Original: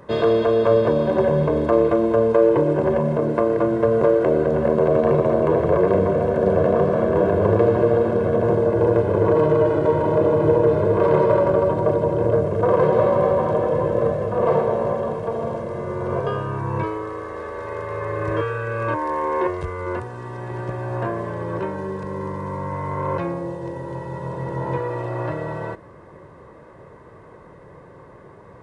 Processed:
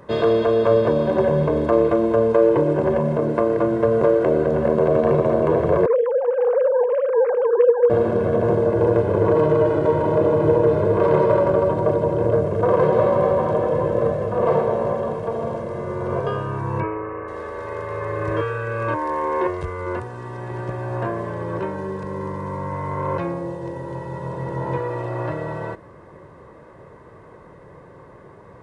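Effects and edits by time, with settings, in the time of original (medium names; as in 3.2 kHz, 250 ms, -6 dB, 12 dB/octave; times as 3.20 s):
5.86–7.90 s: formants replaced by sine waves
16.80–17.28 s: careless resampling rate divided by 8×, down none, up filtered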